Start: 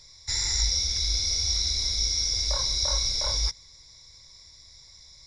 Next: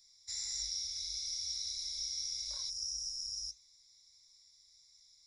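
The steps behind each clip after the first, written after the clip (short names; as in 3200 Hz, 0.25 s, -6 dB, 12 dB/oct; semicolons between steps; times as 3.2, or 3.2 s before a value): flange 1.6 Hz, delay 4.7 ms, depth 6.2 ms, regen -72%; pre-emphasis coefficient 0.9; spectral repair 2.72–3.54, 300–4900 Hz after; gain -5 dB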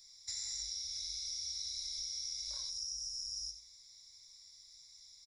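compressor 5:1, threshold -45 dBFS, peak gain reduction 9.5 dB; feedback echo 91 ms, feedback 33%, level -11 dB; gain +5.5 dB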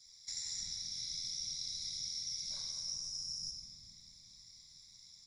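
ring modulator 41 Hz; whisperiser; shoebox room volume 220 m³, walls hard, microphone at 0.51 m; gain +1 dB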